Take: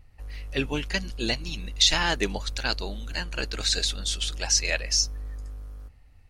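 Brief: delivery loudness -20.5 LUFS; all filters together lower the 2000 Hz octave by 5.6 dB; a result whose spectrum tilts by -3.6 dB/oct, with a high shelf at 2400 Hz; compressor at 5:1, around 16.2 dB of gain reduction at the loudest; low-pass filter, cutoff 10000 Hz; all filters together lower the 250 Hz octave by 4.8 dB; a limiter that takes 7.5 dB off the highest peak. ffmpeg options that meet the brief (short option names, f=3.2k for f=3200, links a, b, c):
-af "lowpass=10k,equalizer=f=250:t=o:g=-6.5,equalizer=f=2k:t=o:g=-3.5,highshelf=f=2.4k:g=-7,acompressor=threshold=-40dB:ratio=5,volume=25dB,alimiter=limit=-9.5dB:level=0:latency=1"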